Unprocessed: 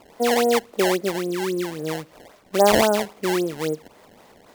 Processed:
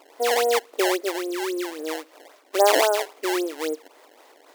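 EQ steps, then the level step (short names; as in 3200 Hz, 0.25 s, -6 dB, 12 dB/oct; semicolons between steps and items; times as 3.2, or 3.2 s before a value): brick-wall FIR high-pass 260 Hz; low shelf 440 Hz -4 dB; 0.0 dB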